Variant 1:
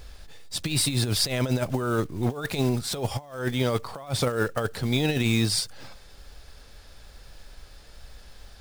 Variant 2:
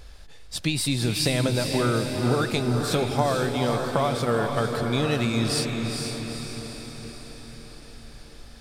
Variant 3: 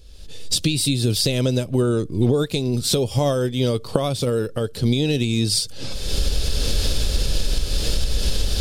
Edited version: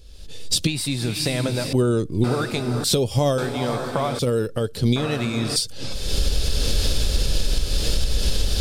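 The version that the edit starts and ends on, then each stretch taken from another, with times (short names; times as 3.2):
3
0.67–1.73 from 2
2.24–2.84 from 2
3.38–4.19 from 2
4.96–5.56 from 2
not used: 1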